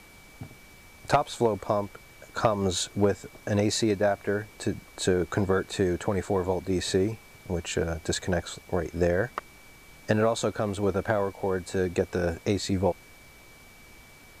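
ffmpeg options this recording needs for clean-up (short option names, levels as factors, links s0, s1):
-af "bandreject=f=2300:w=30,afftdn=nr=21:nf=-51"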